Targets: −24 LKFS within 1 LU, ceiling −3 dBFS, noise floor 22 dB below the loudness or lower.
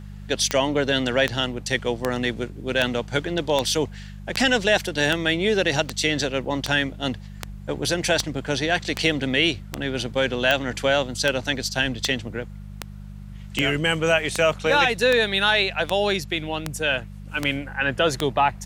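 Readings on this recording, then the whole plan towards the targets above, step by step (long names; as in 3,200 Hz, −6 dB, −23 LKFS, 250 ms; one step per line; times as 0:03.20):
number of clicks 24; mains hum 50 Hz; hum harmonics up to 200 Hz; level of the hum −35 dBFS; integrated loudness −22.5 LKFS; sample peak −5.0 dBFS; target loudness −24.0 LKFS
→ click removal
hum removal 50 Hz, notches 4
level −1.5 dB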